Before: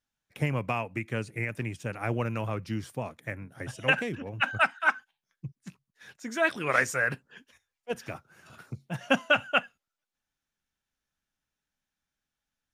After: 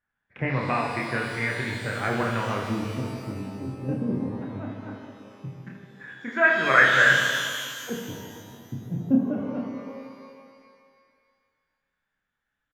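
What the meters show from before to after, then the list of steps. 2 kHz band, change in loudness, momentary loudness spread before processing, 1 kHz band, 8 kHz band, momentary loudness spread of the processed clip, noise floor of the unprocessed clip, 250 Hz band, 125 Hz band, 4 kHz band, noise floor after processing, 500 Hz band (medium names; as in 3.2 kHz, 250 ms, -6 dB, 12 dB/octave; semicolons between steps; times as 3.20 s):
+6.0 dB, +5.0 dB, 19 LU, +4.0 dB, +5.0 dB, 24 LU, under -85 dBFS, +8.0 dB, +3.0 dB, +5.0 dB, -82 dBFS, +2.5 dB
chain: LFO low-pass square 0.19 Hz 280–1700 Hz; reverse bouncing-ball echo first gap 30 ms, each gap 1.6×, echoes 5; pitch-shifted reverb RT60 2 s, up +12 st, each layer -8 dB, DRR 3 dB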